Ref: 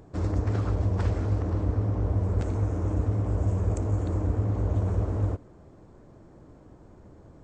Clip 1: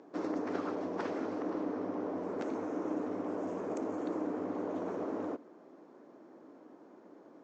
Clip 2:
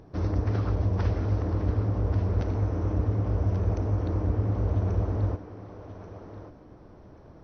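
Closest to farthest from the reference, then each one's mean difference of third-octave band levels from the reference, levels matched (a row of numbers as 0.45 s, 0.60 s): 2, 1; 2.0 dB, 6.5 dB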